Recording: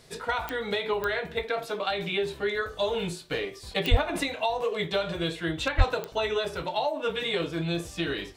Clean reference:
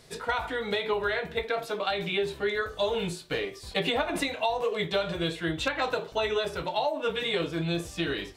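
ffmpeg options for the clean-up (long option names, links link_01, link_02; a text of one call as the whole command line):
ffmpeg -i in.wav -filter_complex "[0:a]adeclick=threshold=4,asplit=3[link_01][link_02][link_03];[link_01]afade=type=out:start_time=3.9:duration=0.02[link_04];[link_02]highpass=frequency=140:width=0.5412,highpass=frequency=140:width=1.3066,afade=type=in:start_time=3.9:duration=0.02,afade=type=out:start_time=4.02:duration=0.02[link_05];[link_03]afade=type=in:start_time=4.02:duration=0.02[link_06];[link_04][link_05][link_06]amix=inputs=3:normalize=0,asplit=3[link_07][link_08][link_09];[link_07]afade=type=out:start_time=5.77:duration=0.02[link_10];[link_08]highpass=frequency=140:width=0.5412,highpass=frequency=140:width=1.3066,afade=type=in:start_time=5.77:duration=0.02,afade=type=out:start_time=5.89:duration=0.02[link_11];[link_09]afade=type=in:start_time=5.89:duration=0.02[link_12];[link_10][link_11][link_12]amix=inputs=3:normalize=0" out.wav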